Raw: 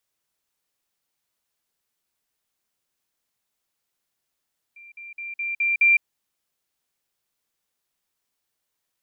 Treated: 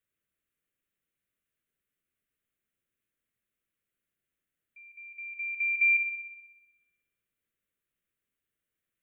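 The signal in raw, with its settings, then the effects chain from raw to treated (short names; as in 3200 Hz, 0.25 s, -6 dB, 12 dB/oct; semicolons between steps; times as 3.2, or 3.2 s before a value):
level ladder 2370 Hz -43 dBFS, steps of 6 dB, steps 6, 0.16 s 0.05 s
high shelf 2300 Hz -8.5 dB; fixed phaser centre 2100 Hz, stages 4; on a send: thin delay 62 ms, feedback 67%, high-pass 2300 Hz, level -10.5 dB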